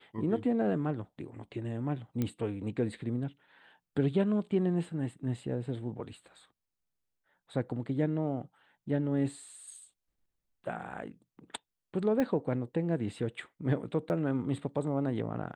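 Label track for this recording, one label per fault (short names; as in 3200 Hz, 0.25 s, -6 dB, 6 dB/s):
2.220000	2.220000	pop -19 dBFS
12.200000	12.200000	pop -18 dBFS
14.090000	14.100000	gap 9.5 ms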